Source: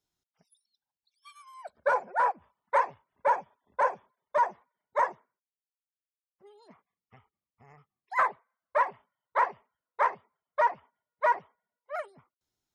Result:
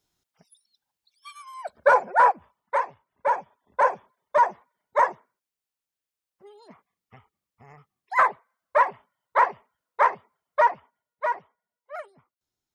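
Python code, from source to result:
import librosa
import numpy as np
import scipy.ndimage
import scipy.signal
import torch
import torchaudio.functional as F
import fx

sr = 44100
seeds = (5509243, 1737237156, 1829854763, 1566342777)

y = fx.gain(x, sr, db=fx.line((2.28, 8.5), (2.86, -1.0), (3.91, 6.0), (10.59, 6.0), (11.31, -1.5)))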